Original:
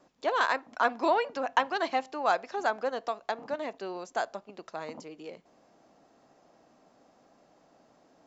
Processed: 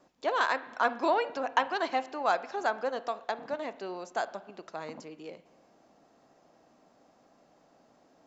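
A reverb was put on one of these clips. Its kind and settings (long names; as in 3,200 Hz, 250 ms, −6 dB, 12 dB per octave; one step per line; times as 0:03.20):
spring reverb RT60 1.1 s, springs 38/51 ms, chirp 25 ms, DRR 15 dB
level −1 dB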